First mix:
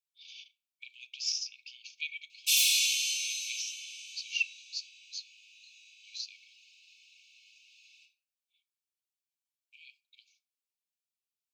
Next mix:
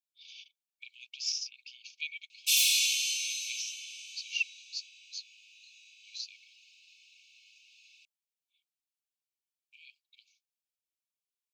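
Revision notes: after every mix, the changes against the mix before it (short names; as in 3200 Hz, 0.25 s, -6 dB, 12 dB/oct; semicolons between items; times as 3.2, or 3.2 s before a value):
speech: send off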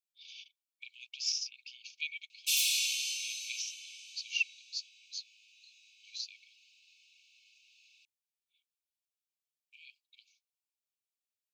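background: send -8.0 dB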